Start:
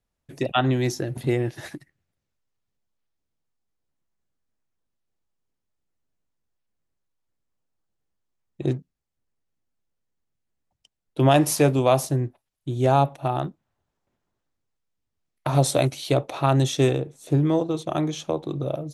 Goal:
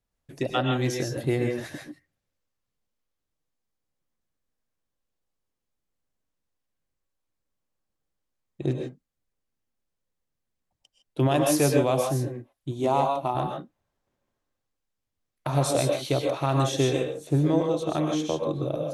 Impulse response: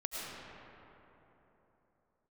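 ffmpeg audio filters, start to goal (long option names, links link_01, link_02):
-filter_complex "[0:a]asettb=1/sr,asplit=3[link_01][link_02][link_03];[link_01]atrim=end=12.714[link_04];[link_02]atrim=start=12.71:end=13.35,asetpts=PTS-STARTPTS,afade=type=in:duration=0.004:curve=qsin,afade=type=out:start_time=0.636:duration=0.004:curve=qsin,equalizer=frequency=125:width_type=o:width=0.33:gain=-10,equalizer=frequency=500:width_type=o:width=0.33:gain=-4,equalizer=frequency=1000:width_type=o:width=0.33:gain=8,equalizer=frequency=1600:width_type=o:width=0.33:gain=-12[link_05];[link_03]atrim=start=13.346[link_06];[link_04][link_05]acrossfade=duration=0.004:curve1=hsin:curve2=qsin[link_07];[link_07][link_06]acrossfade=duration=0.004:curve1=qsin:curve2=hsin,alimiter=limit=-10.5dB:level=0:latency=1:release=301[link_08];[1:a]atrim=start_sample=2205,atrim=end_sample=6174,asetrate=37044,aresample=44100[link_09];[link_08][link_09]afir=irnorm=-1:irlink=0"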